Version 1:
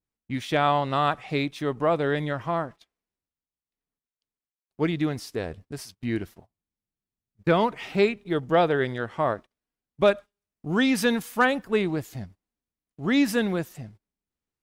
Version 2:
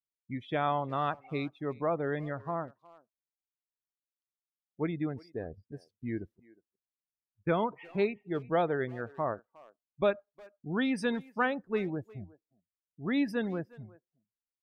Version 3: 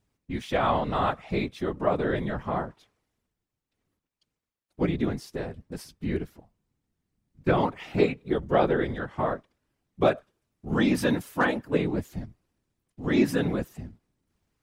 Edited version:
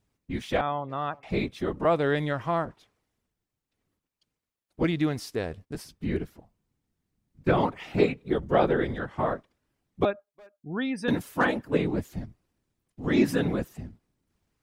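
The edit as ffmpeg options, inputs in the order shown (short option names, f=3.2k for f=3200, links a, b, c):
-filter_complex "[1:a]asplit=2[a][b];[0:a]asplit=2[c][d];[2:a]asplit=5[e][f][g][h][i];[e]atrim=end=0.612[j];[a]atrim=start=0.608:end=1.232[k];[f]atrim=start=1.228:end=1.852[l];[c]atrim=start=1.848:end=2.652[m];[g]atrim=start=2.648:end=4.842[n];[d]atrim=start=4.838:end=5.752[o];[h]atrim=start=5.748:end=10.052[p];[b]atrim=start=10.048:end=11.082[q];[i]atrim=start=11.078[r];[j][k]acrossfade=d=0.004:c1=hsin:c2=hsin[s];[s][l]acrossfade=d=0.004:c1=hsin:c2=hsin[t];[t][m]acrossfade=d=0.004:c1=hsin:c2=hsin[u];[u][n]acrossfade=d=0.004:c1=hsin:c2=hsin[v];[v][o]acrossfade=d=0.004:c1=hsin:c2=hsin[w];[w][p]acrossfade=d=0.004:c1=hsin:c2=hsin[x];[x][q]acrossfade=d=0.004:c1=hsin:c2=hsin[y];[y][r]acrossfade=d=0.004:c1=hsin:c2=hsin"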